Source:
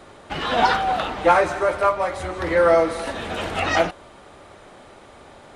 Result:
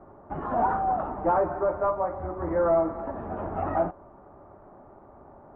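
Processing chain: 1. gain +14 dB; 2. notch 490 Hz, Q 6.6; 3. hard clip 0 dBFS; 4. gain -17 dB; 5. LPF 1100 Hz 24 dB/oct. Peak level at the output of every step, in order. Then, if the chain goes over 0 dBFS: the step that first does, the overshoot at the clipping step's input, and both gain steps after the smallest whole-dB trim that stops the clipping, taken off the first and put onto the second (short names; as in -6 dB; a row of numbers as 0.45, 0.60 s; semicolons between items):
+9.5, +9.0, 0.0, -17.0, -15.5 dBFS; step 1, 9.0 dB; step 1 +5 dB, step 4 -8 dB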